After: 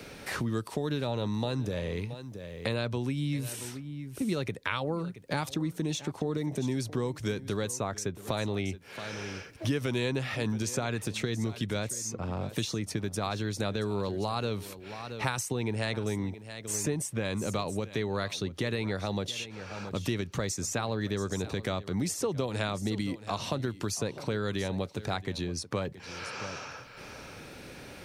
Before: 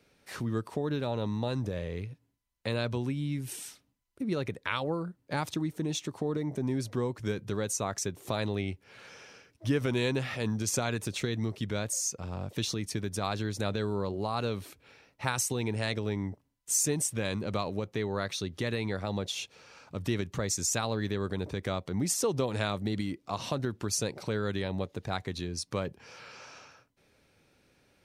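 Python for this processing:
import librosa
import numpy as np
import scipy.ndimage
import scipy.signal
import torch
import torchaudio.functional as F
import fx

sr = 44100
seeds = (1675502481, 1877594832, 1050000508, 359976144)

y = x + 10.0 ** (-18.5 / 20.0) * np.pad(x, (int(675 * sr / 1000.0), 0))[:len(x)]
y = fx.band_squash(y, sr, depth_pct=70)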